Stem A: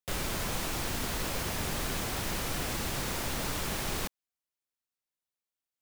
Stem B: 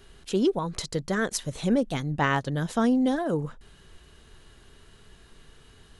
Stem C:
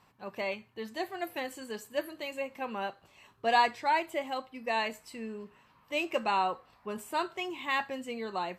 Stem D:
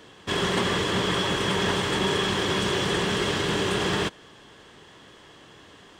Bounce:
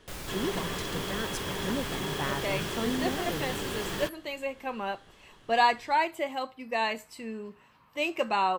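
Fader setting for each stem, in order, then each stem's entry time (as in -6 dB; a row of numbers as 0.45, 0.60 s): -6.5, -10.0, +2.0, -10.5 dB; 0.00, 0.00, 2.05, 0.00 s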